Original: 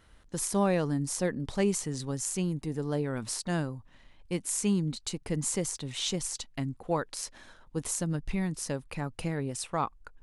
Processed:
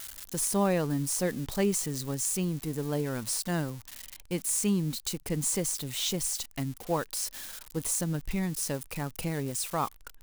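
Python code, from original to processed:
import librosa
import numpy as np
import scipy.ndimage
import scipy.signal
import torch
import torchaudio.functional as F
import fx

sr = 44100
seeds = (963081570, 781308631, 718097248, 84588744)

y = x + 0.5 * 10.0 ** (-31.0 / 20.0) * np.diff(np.sign(x), prepend=np.sign(x[:1]))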